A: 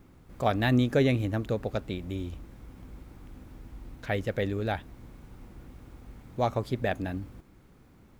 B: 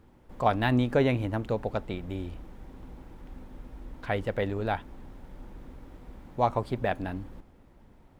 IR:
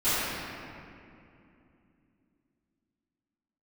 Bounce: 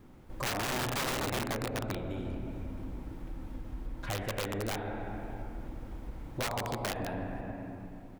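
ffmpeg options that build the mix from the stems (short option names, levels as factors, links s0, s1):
-filter_complex "[0:a]acompressor=threshold=0.0224:ratio=4,volume=0.75[s0];[1:a]volume=-1,adelay=4.9,volume=0.794,asplit=3[s1][s2][s3];[s2]volume=0.141[s4];[s3]apad=whole_len=361505[s5];[s0][s5]sidechaincompress=threshold=0.01:ratio=8:attack=16:release=390[s6];[2:a]atrim=start_sample=2205[s7];[s4][s7]afir=irnorm=-1:irlink=0[s8];[s6][s1][s8]amix=inputs=3:normalize=0,aeval=exprs='(mod(11.2*val(0)+1,2)-1)/11.2':c=same,acompressor=threshold=0.02:ratio=2.5"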